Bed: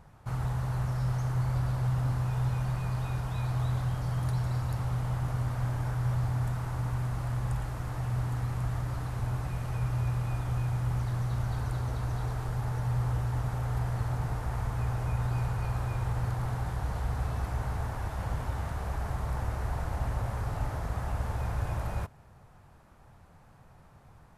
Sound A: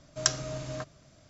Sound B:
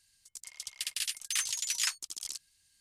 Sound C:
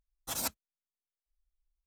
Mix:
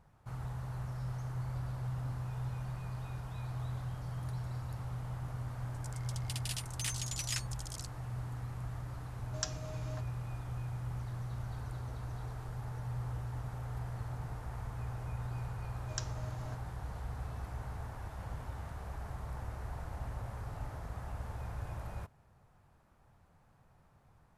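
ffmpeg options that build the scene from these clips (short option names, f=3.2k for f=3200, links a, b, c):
-filter_complex "[1:a]asplit=2[a][b];[0:a]volume=-9.5dB[c];[a]aecho=1:1:6.6:0.41[d];[2:a]atrim=end=2.8,asetpts=PTS-STARTPTS,volume=-7dB,afade=t=in:d=0.004:c=hsin,afade=t=out:st=2.796:d=0.004:c=hsin,adelay=242109S[e];[d]atrim=end=1.29,asetpts=PTS-STARTPTS,volume=-12.5dB,afade=t=in:d=0.004:c=hsin,afade=t=out:st=1.286:d=0.004:c=hsin,adelay=9170[f];[b]atrim=end=1.29,asetpts=PTS-STARTPTS,volume=-15dB,afade=t=in:d=0.004:c=hsin,afade=t=out:st=1.286:d=0.004:c=hsin,adelay=693252S[g];[c][e][f][g]amix=inputs=4:normalize=0"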